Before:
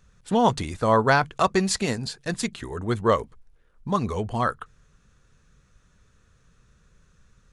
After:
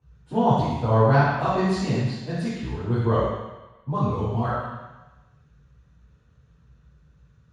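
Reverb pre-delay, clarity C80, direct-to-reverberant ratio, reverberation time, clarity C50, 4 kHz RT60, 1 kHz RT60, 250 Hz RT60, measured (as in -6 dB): 3 ms, 0.5 dB, -11.0 dB, 1.1 s, -2.0 dB, 1.1 s, 1.2 s, 0.90 s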